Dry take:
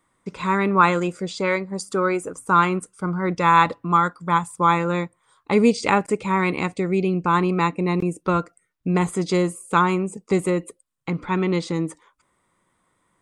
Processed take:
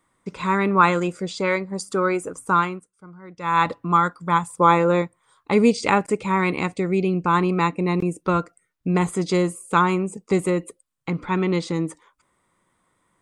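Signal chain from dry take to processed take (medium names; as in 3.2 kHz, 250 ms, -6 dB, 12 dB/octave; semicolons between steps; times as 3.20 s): 2.48–3.72 s: dip -18.5 dB, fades 0.36 s; 4.49–5.02 s: peaking EQ 500 Hz +7.5 dB 1.2 oct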